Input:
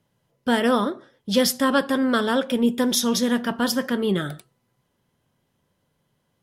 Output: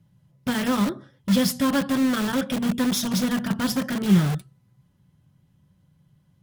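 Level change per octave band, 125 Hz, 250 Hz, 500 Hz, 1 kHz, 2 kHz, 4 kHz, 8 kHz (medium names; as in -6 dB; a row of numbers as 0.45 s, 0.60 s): +9.0 dB, +0.5 dB, -7.5 dB, -4.5 dB, -3.5 dB, -3.5 dB, -3.0 dB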